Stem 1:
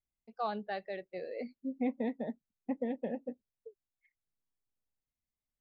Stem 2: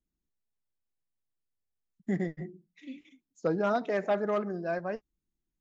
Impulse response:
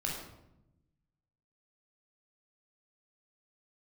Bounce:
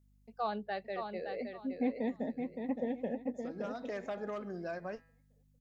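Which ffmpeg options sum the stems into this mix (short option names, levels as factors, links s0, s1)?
-filter_complex "[0:a]aeval=exprs='val(0)+0.000501*(sin(2*PI*50*n/s)+sin(2*PI*2*50*n/s)/2+sin(2*PI*3*50*n/s)/3+sin(2*PI*4*50*n/s)/4+sin(2*PI*5*50*n/s)/5)':c=same,volume=1,asplit=3[s0][s1][s2];[s1]volume=0.501[s3];[1:a]highshelf=f=3900:g=9.5,bandreject=f=163.8:t=h:w=4,bandreject=f=327.6:t=h:w=4,bandreject=f=491.4:t=h:w=4,bandreject=f=655.2:t=h:w=4,bandreject=f=819:t=h:w=4,bandreject=f=982.8:t=h:w=4,bandreject=f=1146.6:t=h:w=4,bandreject=f=1310.4:t=h:w=4,bandreject=f=1474.2:t=h:w=4,bandreject=f=1638:t=h:w=4,bandreject=f=1801.8:t=h:w=4,bandreject=f=1965.6:t=h:w=4,bandreject=f=2129.4:t=h:w=4,bandreject=f=2293.2:t=h:w=4,bandreject=f=2457:t=h:w=4,bandreject=f=2620.8:t=h:w=4,bandreject=f=2784.6:t=h:w=4,bandreject=f=2948.4:t=h:w=4,bandreject=f=3112.2:t=h:w=4,bandreject=f=3276:t=h:w=4,bandreject=f=3439.8:t=h:w=4,bandreject=f=3603.6:t=h:w=4,bandreject=f=3767.4:t=h:w=4,bandreject=f=3931.2:t=h:w=4,bandreject=f=4095:t=h:w=4,bandreject=f=4258.8:t=h:w=4,bandreject=f=4422.6:t=h:w=4,bandreject=f=4586.4:t=h:w=4,bandreject=f=4750.2:t=h:w=4,acompressor=threshold=0.02:ratio=6,volume=0.75[s4];[s2]apad=whole_len=247378[s5];[s4][s5]sidechaincompress=threshold=0.00355:ratio=8:attack=28:release=390[s6];[s3]aecho=0:1:567|1134|1701|2268:1|0.24|0.0576|0.0138[s7];[s0][s6][s7]amix=inputs=3:normalize=0"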